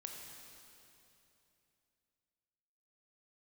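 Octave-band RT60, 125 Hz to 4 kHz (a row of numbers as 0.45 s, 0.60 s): 3.5 s, 3.2 s, 3.1 s, 2.8 s, 2.8 s, 2.7 s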